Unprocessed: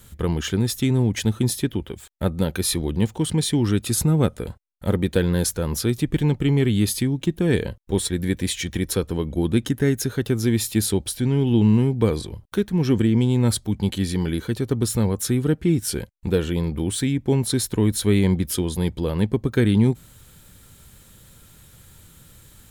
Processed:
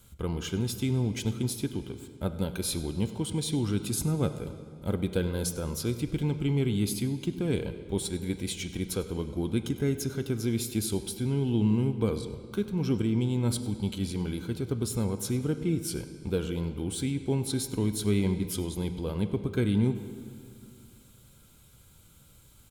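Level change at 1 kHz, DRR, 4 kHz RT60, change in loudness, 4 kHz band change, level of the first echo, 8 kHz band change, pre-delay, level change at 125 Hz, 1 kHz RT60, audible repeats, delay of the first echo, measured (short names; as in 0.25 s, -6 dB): -8.0 dB, 9.0 dB, 1.8 s, -8.0 dB, -8.0 dB, -18.5 dB, -8.5 dB, 5 ms, -8.0 dB, 2.3 s, 1, 99 ms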